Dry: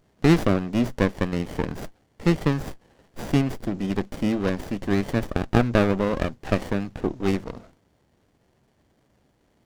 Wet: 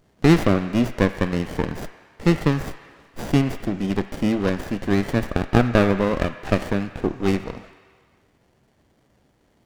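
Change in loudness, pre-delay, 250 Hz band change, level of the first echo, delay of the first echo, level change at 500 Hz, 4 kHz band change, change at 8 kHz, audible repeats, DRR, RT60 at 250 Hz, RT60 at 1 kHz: +2.5 dB, 23 ms, +2.5 dB, no echo audible, no echo audible, +2.5 dB, +3.0 dB, +2.5 dB, no echo audible, 9.0 dB, 1.6 s, 1.8 s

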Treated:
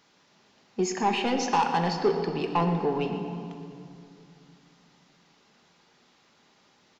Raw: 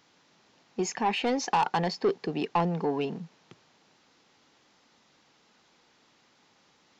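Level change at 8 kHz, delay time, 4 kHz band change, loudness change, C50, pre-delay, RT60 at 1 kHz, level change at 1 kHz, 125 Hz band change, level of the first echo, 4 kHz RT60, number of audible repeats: can't be measured, 120 ms, +1.5 dB, +2.0 dB, 5.5 dB, 5 ms, 2.4 s, +2.0 dB, +3.5 dB, −13.5 dB, 1.8 s, 1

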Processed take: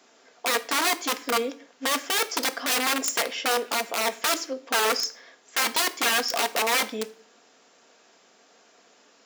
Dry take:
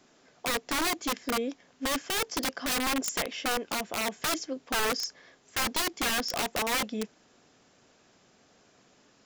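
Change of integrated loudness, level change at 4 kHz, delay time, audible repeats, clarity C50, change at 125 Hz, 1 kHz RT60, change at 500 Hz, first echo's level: +5.0 dB, +5.5 dB, no echo audible, no echo audible, 17.5 dB, can't be measured, 0.50 s, +5.0 dB, no echo audible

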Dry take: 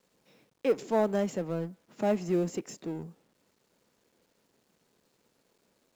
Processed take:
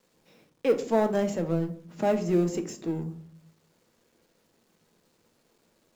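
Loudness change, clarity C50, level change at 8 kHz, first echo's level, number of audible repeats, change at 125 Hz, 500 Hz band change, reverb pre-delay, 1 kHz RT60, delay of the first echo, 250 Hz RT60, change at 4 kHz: +3.5 dB, 14.5 dB, can't be measured, no echo audible, no echo audible, +5.5 dB, +3.0 dB, 6 ms, 0.40 s, no echo audible, 0.80 s, +3.0 dB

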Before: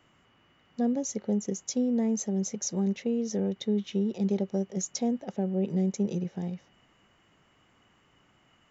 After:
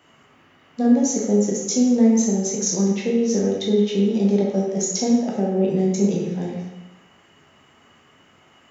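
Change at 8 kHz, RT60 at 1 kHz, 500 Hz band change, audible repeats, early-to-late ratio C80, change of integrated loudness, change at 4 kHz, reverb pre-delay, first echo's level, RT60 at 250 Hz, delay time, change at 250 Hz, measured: can't be measured, 1.0 s, +11.0 dB, no echo audible, 4.5 dB, +10.0 dB, +10.5 dB, 10 ms, no echo audible, 0.95 s, no echo audible, +9.5 dB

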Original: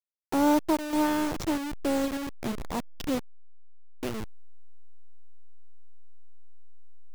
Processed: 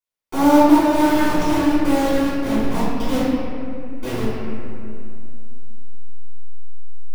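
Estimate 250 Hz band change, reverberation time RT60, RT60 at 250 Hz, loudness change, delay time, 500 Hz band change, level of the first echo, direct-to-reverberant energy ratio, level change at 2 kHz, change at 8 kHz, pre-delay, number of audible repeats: +11.5 dB, 2.5 s, 3.1 s, +10.5 dB, no echo audible, +10.5 dB, no echo audible, −13.5 dB, +10.5 dB, +6.0 dB, 3 ms, no echo audible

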